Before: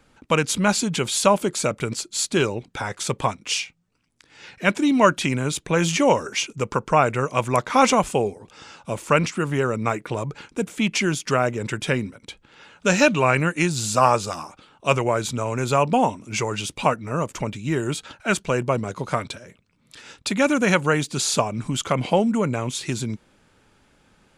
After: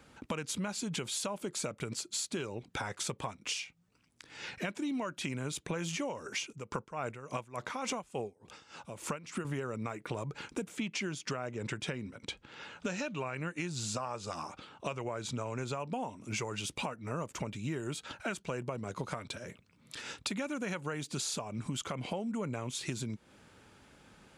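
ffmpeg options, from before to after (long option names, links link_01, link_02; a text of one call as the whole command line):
ffmpeg -i in.wav -filter_complex "[0:a]asettb=1/sr,asplit=3[link_01][link_02][link_03];[link_01]atrim=end=6.514[link_04];[link_02]atrim=start=6.51:end=9.45,asetpts=PTS-STARTPTS,afade=type=in:duration=0.004:curve=qsin,afade=type=out:start_time=2.936:duration=0.004:curve=qsin,aeval=exprs='val(0)*pow(10,-19*(0.5-0.5*cos(2*PI*3.5*n/s))/20)':channel_layout=same[link_05];[link_03]atrim=start=9.446[link_06];[link_04][link_05]acrossfade=duration=0.004:curve1=hsin:curve2=qsin[link_07];[link_07][link_06]acrossfade=duration=0.004:curve1=qsin:curve2=hsin,asettb=1/sr,asplit=3[link_08][link_09][link_10];[link_08]atrim=end=10.774[link_11];[link_09]atrim=start=10.77:end=15.8,asetpts=PTS-STARTPTS,afade=type=in:duration=0.004:curve=qsin,afade=type=out:start_time=5.026:duration=0.004:curve=qsin,lowpass=7900[link_12];[link_10]atrim=start=15.796[link_13];[link_11][link_12]acrossfade=duration=0.004:curve1=hsin:curve2=qsin[link_14];[link_14][link_13]acrossfade=duration=0.004:curve1=qsin:curve2=hsin,highpass=48,alimiter=limit=-13dB:level=0:latency=1:release=330,acompressor=threshold=-35dB:ratio=5" out.wav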